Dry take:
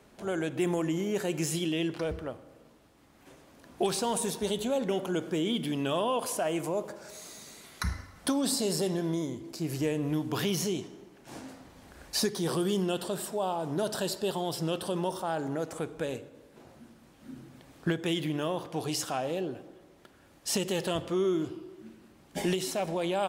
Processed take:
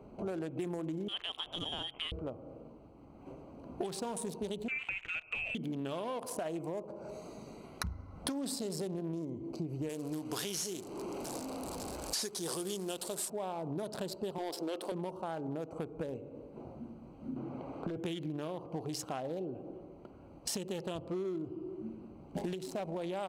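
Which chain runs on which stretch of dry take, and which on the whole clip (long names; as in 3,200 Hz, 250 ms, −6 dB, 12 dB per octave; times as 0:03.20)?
0:01.08–0:02.12: low-shelf EQ 360 Hz −5 dB + voice inversion scrambler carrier 3,500 Hz
0:04.68–0:05.55: low-shelf EQ 130 Hz −8.5 dB + voice inversion scrambler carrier 2,900 Hz
0:09.89–0:13.30: linear delta modulator 64 kbit/s, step −36 dBFS + bass and treble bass −9 dB, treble +11 dB
0:14.38–0:14.92: high-pass filter 290 Hz 24 dB per octave + leveller curve on the samples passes 1
0:17.36–0:17.97: downward compressor, threshold −31 dBFS + mid-hump overdrive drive 19 dB, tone 1,500 Hz, clips at −24.5 dBFS
whole clip: adaptive Wiener filter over 25 samples; downward compressor 6 to 1, threshold −43 dBFS; level +7 dB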